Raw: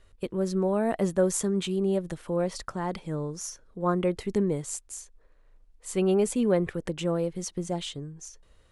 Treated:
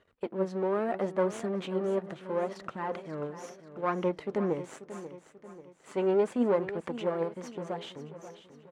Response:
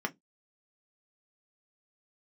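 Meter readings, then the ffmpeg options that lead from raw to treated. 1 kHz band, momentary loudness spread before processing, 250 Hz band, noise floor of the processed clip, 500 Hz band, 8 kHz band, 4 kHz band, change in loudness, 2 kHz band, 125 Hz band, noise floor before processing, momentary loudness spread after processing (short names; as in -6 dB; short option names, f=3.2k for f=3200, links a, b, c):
0.0 dB, 13 LU, -5.5 dB, -61 dBFS, -2.0 dB, -18.0 dB, -8.5 dB, -3.5 dB, -1.0 dB, -8.5 dB, -60 dBFS, 18 LU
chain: -filter_complex "[0:a]aeval=exprs='if(lt(val(0),0),0.251*val(0),val(0))':c=same,aemphasis=mode=production:type=50fm,flanger=delay=0.3:depth=7.4:regen=67:speed=0.74:shape=sinusoidal,highpass=190,lowpass=2k,aecho=1:1:538|1076|1614|2152|2690:0.224|0.107|0.0516|0.0248|0.0119,asplit=2[a][b];[1:a]atrim=start_sample=2205[c];[b][c]afir=irnorm=-1:irlink=0,volume=-22dB[d];[a][d]amix=inputs=2:normalize=0,volume=5.5dB"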